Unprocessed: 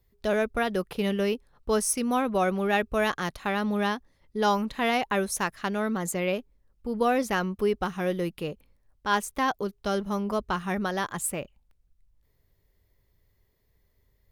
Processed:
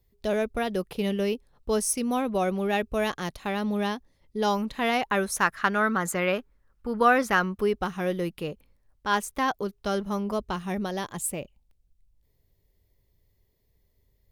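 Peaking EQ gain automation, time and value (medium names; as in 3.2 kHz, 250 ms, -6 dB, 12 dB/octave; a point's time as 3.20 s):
peaking EQ 1.4 kHz 1.1 oct
4.45 s -5.5 dB
5.29 s +5 dB
5.56 s +11.5 dB
7.18 s +11.5 dB
7.76 s 0 dB
10.11 s 0 dB
10.73 s -8.5 dB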